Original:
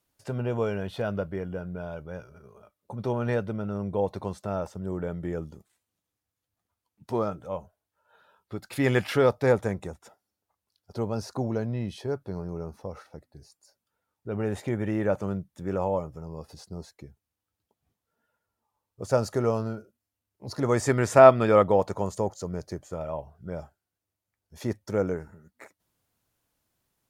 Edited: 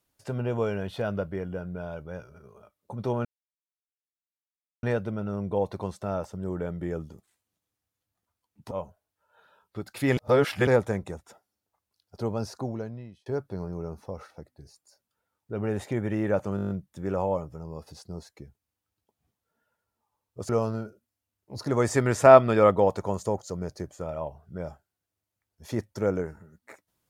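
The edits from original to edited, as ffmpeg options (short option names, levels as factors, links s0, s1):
-filter_complex "[0:a]asplit=14[s0][s1][s2][s3][s4][s5][s6][s7][s8][s9][s10][s11][s12][s13];[s0]atrim=end=3.25,asetpts=PTS-STARTPTS,afade=t=out:st=3.246:d=0.004:c=hsin,apad=pad_dur=1.58[s14];[s1]atrim=start=3.25:end=7.132,asetpts=PTS-STARTPTS,afade=t=in:d=0.004:c=hsin[s15];[s2]atrim=start=7.468:end=8.932[s16];[s3]atrim=start=8.928:end=9.432,asetpts=PTS-STARTPTS,areverse[s17];[s4]atrim=start=9.428:end=12.02,asetpts=PTS-STARTPTS,afade=t=out:st=1.732:d=0.86[s18];[s5]atrim=start=12.02:end=15.342,asetpts=PTS-STARTPTS,afade=t=in:d=0.004:c=hsin[s19];[s6]atrim=start=15.318:end=15.342[s20];[s7]atrim=start=15.318:end=15.342[s21];[s8]atrim=start=15.318:end=15.342[s22];[s9]atrim=start=15.318:end=15.342[s23];[s10]atrim=start=15.318:end=15.342[s24];[s11]atrim=start=15.318:end=15.342[s25];[s12]atrim=start=15.318:end=19.112[s26];[s13]atrim=start=19.408[s27];[s14][s15]concat=n=2:v=0:a=1[s28];[s28][s16]acrossfade=d=0.004:c1=hsin:c2=hsin[s29];[s29][s17]acrossfade=d=0.004:c1=hsin:c2=hsin[s30];[s18][s19]concat=n=2:v=0:a=1[s31];[s30][s31]acrossfade=d=0.004:c1=hsin:c2=hsin[s32];[s32][s20]acrossfade=d=0.004:c1=hsin:c2=hsin[s33];[s33][s21]acrossfade=d=0.004:c1=hsin:c2=hsin[s34];[s34][s22]acrossfade=d=0.004:c1=hsin:c2=hsin[s35];[s35][s23]acrossfade=d=0.004:c1=hsin:c2=hsin[s36];[s36][s24]acrossfade=d=0.004:c1=hsin:c2=hsin[s37];[s37][s25]acrossfade=d=0.004:c1=hsin:c2=hsin[s38];[s38][s26]acrossfade=d=0.004:c1=hsin:c2=hsin[s39];[s39][s27]acrossfade=d=0.004:c1=hsin:c2=hsin"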